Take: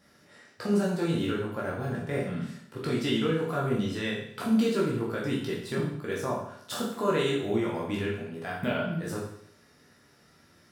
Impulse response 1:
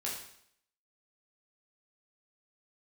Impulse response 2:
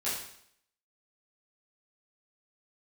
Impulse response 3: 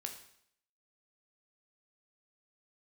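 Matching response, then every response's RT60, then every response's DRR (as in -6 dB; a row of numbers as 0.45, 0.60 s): 1; 0.65, 0.65, 0.65 s; -4.5, -11.0, 4.0 dB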